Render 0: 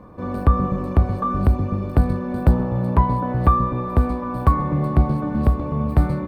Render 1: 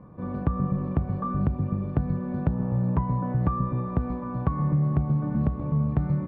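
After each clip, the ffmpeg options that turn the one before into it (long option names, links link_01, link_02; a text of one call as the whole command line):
ffmpeg -i in.wav -af "lowpass=2500,equalizer=frequency=150:width_type=o:width=0.8:gain=12,acompressor=threshold=-11dB:ratio=6,volume=-8.5dB" out.wav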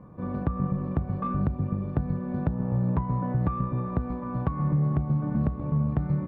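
ffmpeg -i in.wav -filter_complex "[0:a]asplit=2[link_01][link_02];[link_02]alimiter=limit=-20dB:level=0:latency=1:release=378,volume=2dB[link_03];[link_01][link_03]amix=inputs=2:normalize=0,aeval=exprs='0.422*(cos(1*acos(clip(val(0)/0.422,-1,1)))-cos(1*PI/2))+0.00841*(cos(7*acos(clip(val(0)/0.422,-1,1)))-cos(7*PI/2))':channel_layout=same,volume=-6dB" out.wav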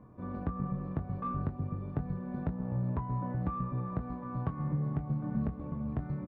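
ffmpeg -i in.wav -filter_complex "[0:a]areverse,acompressor=mode=upward:threshold=-37dB:ratio=2.5,areverse,flanger=delay=2.9:depth=5:regen=-63:speed=0.33:shape=sinusoidal,asplit=2[link_01][link_02];[link_02]adelay=23,volume=-9.5dB[link_03];[link_01][link_03]amix=inputs=2:normalize=0,volume=-3dB" out.wav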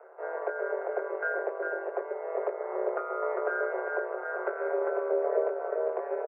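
ffmpeg -i in.wav -af "highpass=frequency=150:width_type=q:width=0.5412,highpass=frequency=150:width_type=q:width=1.307,lowpass=frequency=2000:width_type=q:width=0.5176,lowpass=frequency=2000:width_type=q:width=0.7071,lowpass=frequency=2000:width_type=q:width=1.932,afreqshift=330,aecho=1:1:400:0.562,aeval=exprs='val(0)*sin(2*PI*80*n/s)':channel_layout=same,volume=8dB" out.wav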